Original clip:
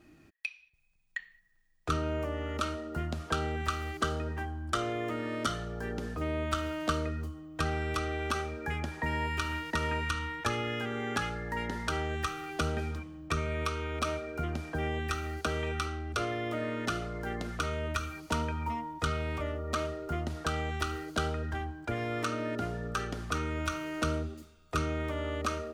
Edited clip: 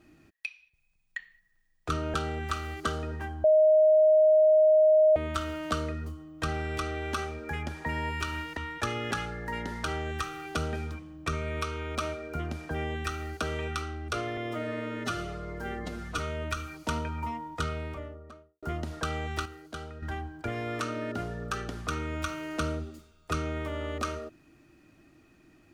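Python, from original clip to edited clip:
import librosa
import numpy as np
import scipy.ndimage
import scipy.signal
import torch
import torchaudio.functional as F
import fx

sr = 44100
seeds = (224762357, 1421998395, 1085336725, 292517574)

y = fx.studio_fade_out(x, sr, start_s=18.95, length_s=1.11)
y = fx.edit(y, sr, fx.cut(start_s=2.14, length_s=1.17),
    fx.bleep(start_s=4.61, length_s=1.72, hz=622.0, db=-16.5),
    fx.cut(start_s=9.74, length_s=0.46),
    fx.cut(start_s=10.74, length_s=0.41),
    fx.stretch_span(start_s=16.41, length_s=1.21, factor=1.5),
    fx.clip_gain(start_s=20.89, length_s=0.57, db=-9.0), tone=tone)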